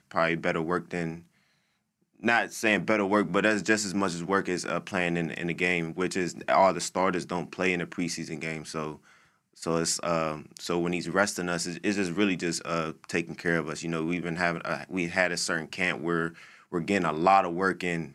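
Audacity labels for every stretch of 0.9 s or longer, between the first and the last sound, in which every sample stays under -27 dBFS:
1.130000	2.250000	silence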